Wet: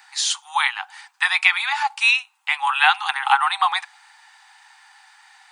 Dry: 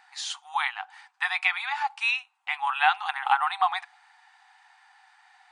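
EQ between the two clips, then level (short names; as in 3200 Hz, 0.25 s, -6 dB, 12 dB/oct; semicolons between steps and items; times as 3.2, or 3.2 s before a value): steep high-pass 780 Hz 96 dB/oct; high shelf 4100 Hz +11.5 dB; +5.5 dB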